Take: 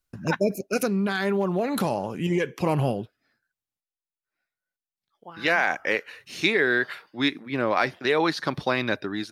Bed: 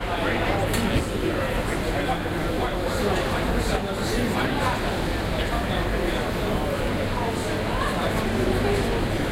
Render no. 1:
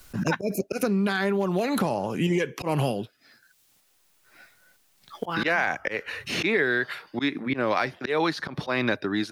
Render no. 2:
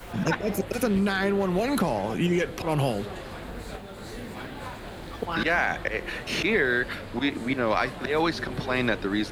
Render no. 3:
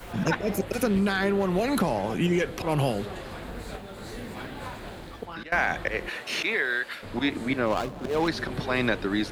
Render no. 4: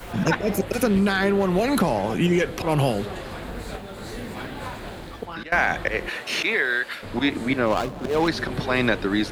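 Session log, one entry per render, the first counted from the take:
auto swell 0.183 s; three-band squash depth 100%
add bed -14 dB
4.88–5.52 fade out, to -22 dB; 6.08–7.02 HPF 480 Hz -> 1500 Hz 6 dB/oct; 7.66–8.28 median filter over 25 samples
gain +4 dB

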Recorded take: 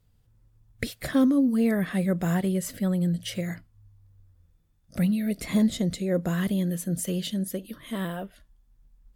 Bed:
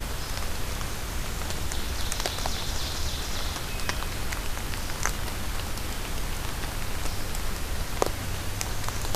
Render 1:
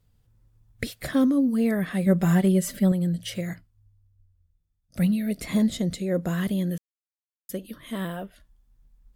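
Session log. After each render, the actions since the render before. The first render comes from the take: 2.06–2.92 comb 5.1 ms, depth 99%; 3.53–5.37 three-band expander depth 40%; 6.78–7.49 mute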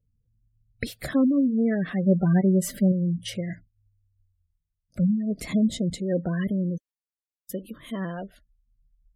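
gate -49 dBFS, range -7 dB; spectral gate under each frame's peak -25 dB strong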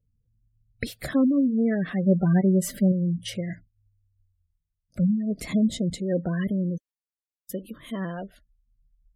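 nothing audible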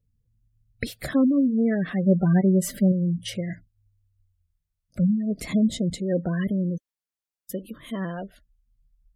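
gain +1 dB

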